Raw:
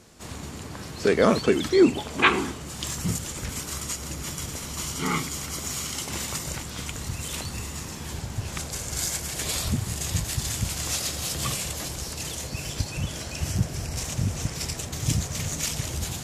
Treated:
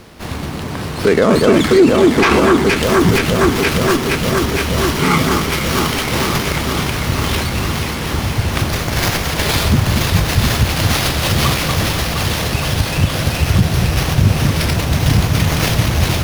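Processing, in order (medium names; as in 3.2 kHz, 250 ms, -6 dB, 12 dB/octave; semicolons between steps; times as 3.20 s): echo whose repeats swap between lows and highs 234 ms, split 1.6 kHz, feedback 89%, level -6 dB; loudness maximiser +14.5 dB; sliding maximum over 5 samples; trim -1 dB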